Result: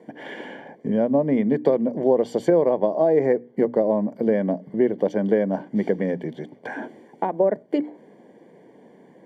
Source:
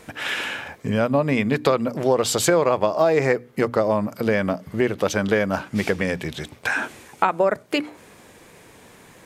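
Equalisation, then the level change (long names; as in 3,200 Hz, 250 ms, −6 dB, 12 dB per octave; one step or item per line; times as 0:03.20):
moving average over 34 samples
high-pass filter 180 Hz 24 dB per octave
+3.0 dB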